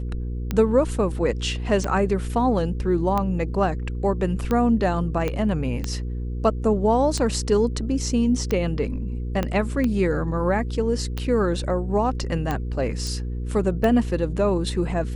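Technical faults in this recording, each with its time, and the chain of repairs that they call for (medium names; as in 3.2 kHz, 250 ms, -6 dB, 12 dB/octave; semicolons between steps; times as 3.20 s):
hum 60 Hz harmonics 8 -28 dBFS
tick 45 rpm -12 dBFS
5.28 s: pop -13 dBFS
9.43 s: pop -11 dBFS
13.07 s: pop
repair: de-click; de-hum 60 Hz, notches 8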